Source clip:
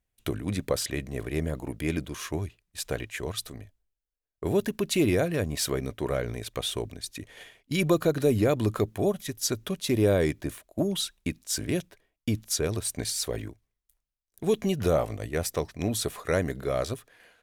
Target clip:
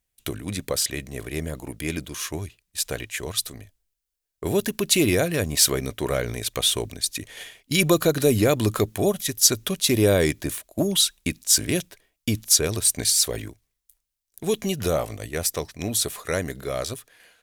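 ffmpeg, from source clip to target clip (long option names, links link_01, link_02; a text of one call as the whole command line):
ffmpeg -i in.wav -af "highshelf=frequency=2700:gain=10.5,dynaudnorm=framelen=280:gausssize=31:maxgain=11.5dB,volume=-1dB" out.wav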